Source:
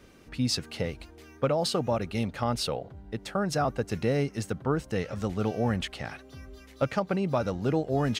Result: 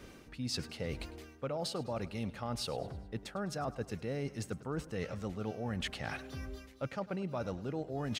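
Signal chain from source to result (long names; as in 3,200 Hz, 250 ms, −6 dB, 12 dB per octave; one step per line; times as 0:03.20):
reversed playback
downward compressor 6 to 1, threshold −38 dBFS, peak gain reduction 16 dB
reversed playback
repeating echo 103 ms, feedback 50%, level −18 dB
level +2.5 dB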